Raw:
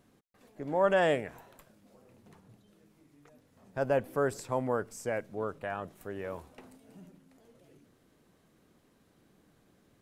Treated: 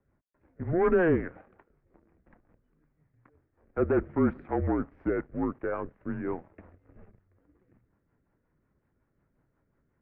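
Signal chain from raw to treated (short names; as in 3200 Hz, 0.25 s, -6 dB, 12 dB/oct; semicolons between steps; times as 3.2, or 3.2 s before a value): sample leveller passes 2; mistuned SSB -170 Hz 190–2200 Hz; rotary speaker horn 5.5 Hz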